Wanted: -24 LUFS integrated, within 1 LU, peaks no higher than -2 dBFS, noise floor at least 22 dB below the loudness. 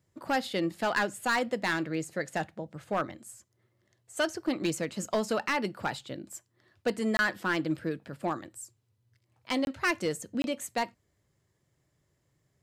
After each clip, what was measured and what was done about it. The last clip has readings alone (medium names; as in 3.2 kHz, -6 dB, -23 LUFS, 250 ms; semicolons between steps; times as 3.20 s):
clipped samples 0.5%; clipping level -21.0 dBFS; dropouts 3; longest dropout 21 ms; loudness -31.5 LUFS; peak level -21.0 dBFS; loudness target -24.0 LUFS
-> clip repair -21 dBFS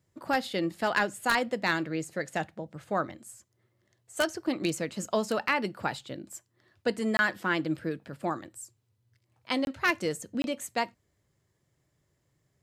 clipped samples 0.0%; dropouts 3; longest dropout 21 ms
-> interpolate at 7.17/9.65/10.42 s, 21 ms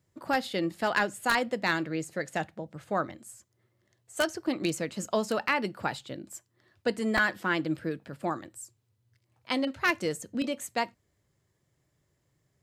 dropouts 0; loudness -30.5 LUFS; peak level -12.0 dBFS; loudness target -24.0 LUFS
-> trim +6.5 dB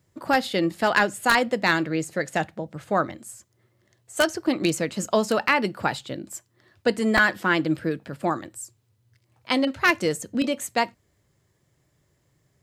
loudness -24.0 LUFS; peak level -5.5 dBFS; noise floor -68 dBFS